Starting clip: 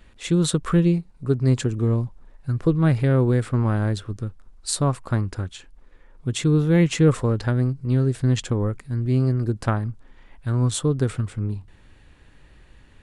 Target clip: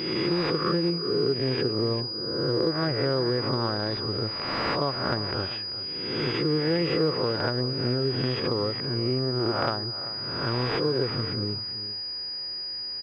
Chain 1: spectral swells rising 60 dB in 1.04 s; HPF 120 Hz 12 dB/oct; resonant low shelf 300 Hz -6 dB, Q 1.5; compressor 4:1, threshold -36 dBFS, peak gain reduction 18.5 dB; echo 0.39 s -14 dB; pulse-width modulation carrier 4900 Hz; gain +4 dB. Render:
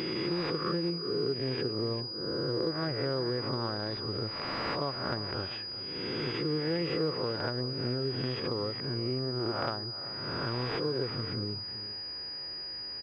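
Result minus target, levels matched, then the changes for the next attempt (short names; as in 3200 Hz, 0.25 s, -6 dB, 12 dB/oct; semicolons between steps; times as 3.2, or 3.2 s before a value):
compressor: peak gain reduction +6.5 dB
change: compressor 4:1, threshold -27.5 dBFS, peak gain reduction 12 dB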